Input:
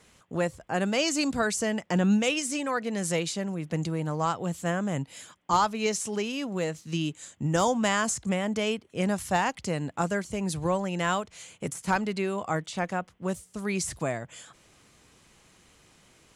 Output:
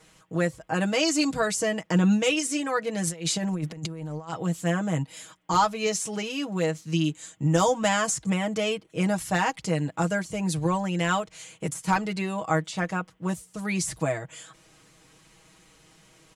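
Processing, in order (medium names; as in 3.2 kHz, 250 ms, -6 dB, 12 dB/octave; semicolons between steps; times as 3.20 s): comb 6.3 ms, depth 80%; 3.07–4.33 s: compressor with a negative ratio -30 dBFS, ratio -0.5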